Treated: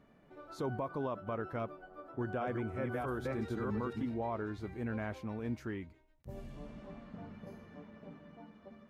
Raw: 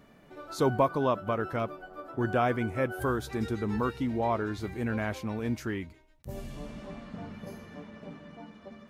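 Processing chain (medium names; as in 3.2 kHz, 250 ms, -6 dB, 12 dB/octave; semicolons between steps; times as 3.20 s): 2.08–4.14 s: chunks repeated in reverse 325 ms, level -2 dB; treble shelf 3.4 kHz -10.5 dB; peak limiter -21.5 dBFS, peak gain reduction 8.5 dB; trim -6.5 dB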